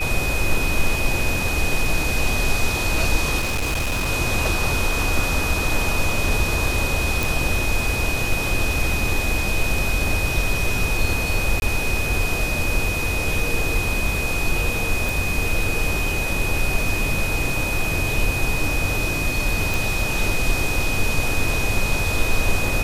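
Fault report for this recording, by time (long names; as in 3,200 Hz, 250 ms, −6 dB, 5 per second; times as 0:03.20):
whistle 2,500 Hz −25 dBFS
0:03.39–0:04.09: clipping −19 dBFS
0:07.23: click
0:11.60–0:11.62: drop-out 21 ms
0:15.09: click
0:19.74: click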